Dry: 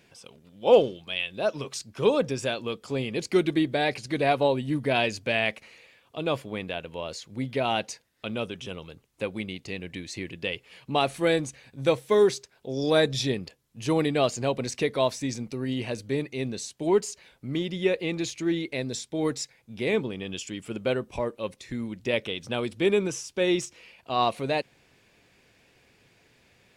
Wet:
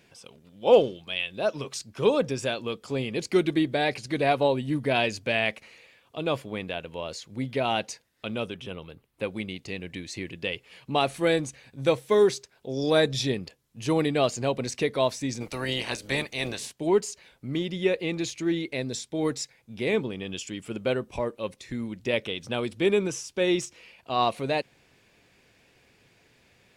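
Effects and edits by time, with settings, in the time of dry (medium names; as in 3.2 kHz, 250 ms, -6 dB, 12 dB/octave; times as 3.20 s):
8.54–9.23 s: peaking EQ 6.6 kHz -10 dB 0.98 oct
15.40–16.71 s: spectral peaks clipped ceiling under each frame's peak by 21 dB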